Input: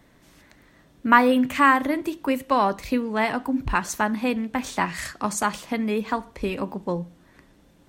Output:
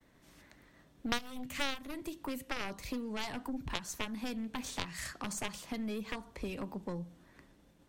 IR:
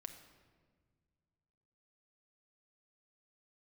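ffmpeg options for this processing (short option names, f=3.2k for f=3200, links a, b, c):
-filter_complex "[0:a]agate=range=-33dB:threshold=-53dB:ratio=3:detection=peak,aeval=exprs='0.841*(cos(1*acos(clip(val(0)/0.841,-1,1)))-cos(1*PI/2))+0.266*(cos(3*acos(clip(val(0)/0.841,-1,1)))-cos(3*PI/2))+0.0422*(cos(4*acos(clip(val(0)/0.841,-1,1)))-cos(4*PI/2))+0.0376*(cos(7*acos(clip(val(0)/0.841,-1,1)))-cos(7*PI/2))':c=same,acrossover=split=180|3700[a][b][c];[a]acompressor=threshold=-47dB:ratio=4[d];[b]acompressor=threshold=-46dB:ratio=4[e];[c]acompressor=threshold=-46dB:ratio=4[f];[d][e][f]amix=inputs=3:normalize=0,volume=6dB"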